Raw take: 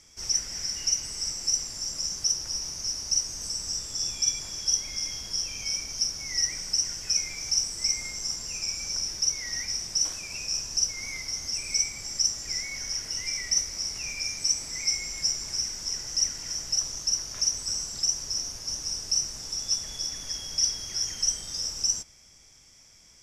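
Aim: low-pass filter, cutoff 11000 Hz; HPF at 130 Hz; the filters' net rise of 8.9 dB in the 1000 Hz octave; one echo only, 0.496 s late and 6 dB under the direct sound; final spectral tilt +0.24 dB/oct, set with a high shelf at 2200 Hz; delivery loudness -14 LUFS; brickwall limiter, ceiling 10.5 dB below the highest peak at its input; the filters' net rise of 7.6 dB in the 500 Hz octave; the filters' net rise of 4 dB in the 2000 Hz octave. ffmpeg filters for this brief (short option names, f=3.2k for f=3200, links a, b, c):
-af "highpass=130,lowpass=11k,equalizer=f=500:t=o:g=7,equalizer=f=1k:t=o:g=9,equalizer=f=2k:t=o:g=6.5,highshelf=f=2.2k:g=-7.5,alimiter=level_in=2dB:limit=-24dB:level=0:latency=1,volume=-2dB,aecho=1:1:496:0.501,volume=20dB"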